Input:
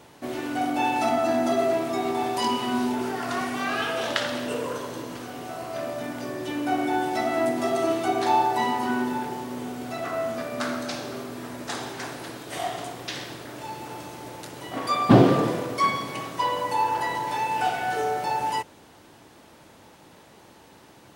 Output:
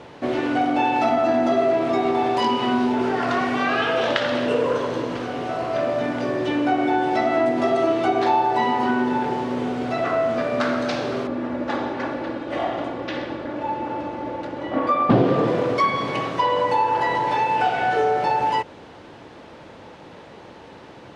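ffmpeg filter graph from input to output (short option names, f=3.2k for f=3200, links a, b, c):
-filter_complex "[0:a]asettb=1/sr,asplit=3[a][b][c];[a]atrim=end=11.274[d];[b]atrim=start=11.27:end=15.1,asetpts=PTS-STARTPTS,afade=t=in:d=0.004:c=qsin,afade=t=out:st=3.826:d=0.004:c=qsin,lowpass=f=1.3k:p=1,aecho=1:1:3.5:0.58,atrim=end_sample=168903[e];[c]atrim=start=15.096[f];[d][e]acrossfade=d=0.004:c1=hsin:c2=qsin[g];[g][f]acrossfade=d=0.004:c1=qsin:c2=hsin,acompressor=threshold=-27dB:ratio=2.5,lowpass=3.7k,equalizer=f=500:w=2.9:g=4.5,volume=8dB"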